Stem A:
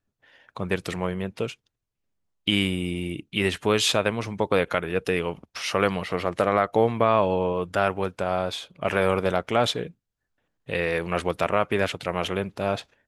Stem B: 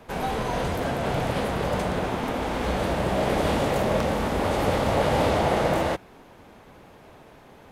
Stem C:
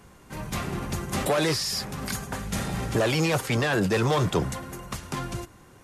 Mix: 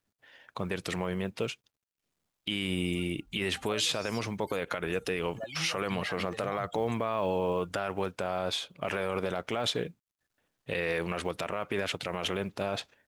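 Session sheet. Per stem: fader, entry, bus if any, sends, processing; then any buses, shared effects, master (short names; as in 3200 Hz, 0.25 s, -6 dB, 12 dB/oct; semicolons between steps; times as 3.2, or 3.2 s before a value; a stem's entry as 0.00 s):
-1.5 dB, 0.00 s, bus A, no send, high shelf 3100 Hz +5 dB
off
-11.5 dB, 2.40 s, no bus, no send, per-bin expansion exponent 3; comb 1.3 ms
bus A: 0.0 dB, high shelf 9200 Hz -7 dB; limiter -13.5 dBFS, peak gain reduction 7 dB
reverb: off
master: low shelf 65 Hz -8 dB; companded quantiser 8-bit; limiter -19 dBFS, peak gain reduction 6 dB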